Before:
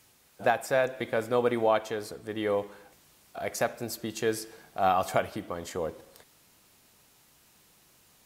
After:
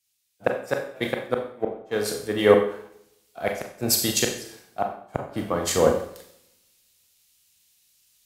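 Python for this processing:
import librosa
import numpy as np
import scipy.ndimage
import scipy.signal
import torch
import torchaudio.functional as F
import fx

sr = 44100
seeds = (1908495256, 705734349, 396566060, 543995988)

p1 = fx.rider(x, sr, range_db=4, speed_s=0.5)
p2 = x + (p1 * librosa.db_to_amplitude(0.5))
p3 = fx.gate_flip(p2, sr, shuts_db=-11.0, range_db=-33)
p4 = fx.echo_filtered(p3, sr, ms=166, feedback_pct=67, hz=1500.0, wet_db=-18.5)
p5 = fx.rev_schroeder(p4, sr, rt60_s=0.84, comb_ms=30, drr_db=2.5)
y = fx.band_widen(p5, sr, depth_pct=100)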